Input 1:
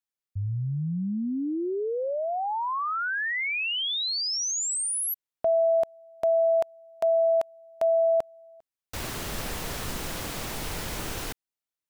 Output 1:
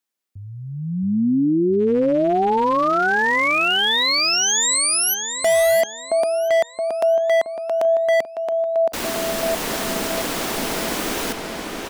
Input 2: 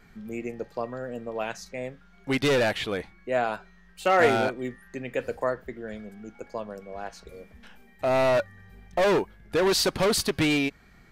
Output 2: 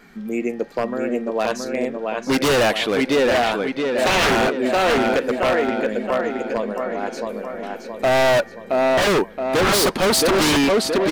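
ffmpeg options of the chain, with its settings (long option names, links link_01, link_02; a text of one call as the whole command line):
ffmpeg -i in.wav -filter_complex "[0:a]lowshelf=frequency=160:width_type=q:width=1.5:gain=-12,asplit=2[link_01][link_02];[link_02]adelay=672,lowpass=frequency=4900:poles=1,volume=-4dB,asplit=2[link_03][link_04];[link_04]adelay=672,lowpass=frequency=4900:poles=1,volume=0.54,asplit=2[link_05][link_06];[link_06]adelay=672,lowpass=frequency=4900:poles=1,volume=0.54,asplit=2[link_07][link_08];[link_08]adelay=672,lowpass=frequency=4900:poles=1,volume=0.54,asplit=2[link_09][link_10];[link_10]adelay=672,lowpass=frequency=4900:poles=1,volume=0.54,asplit=2[link_11][link_12];[link_12]adelay=672,lowpass=frequency=4900:poles=1,volume=0.54,asplit=2[link_13][link_14];[link_14]adelay=672,lowpass=frequency=4900:poles=1,volume=0.54[link_15];[link_01][link_03][link_05][link_07][link_09][link_11][link_13][link_15]amix=inputs=8:normalize=0,aeval=exprs='0.0944*(abs(mod(val(0)/0.0944+3,4)-2)-1)':channel_layout=same,volume=8.5dB" out.wav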